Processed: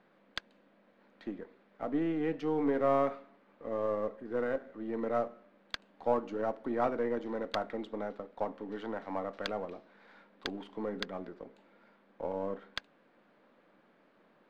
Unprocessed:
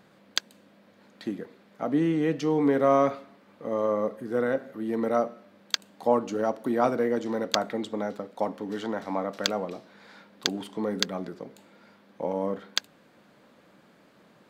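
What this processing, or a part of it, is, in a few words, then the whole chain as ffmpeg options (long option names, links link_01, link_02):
crystal radio: -af "highpass=220,lowpass=2700,aeval=exprs='if(lt(val(0),0),0.708*val(0),val(0))':channel_layout=same,volume=-5dB"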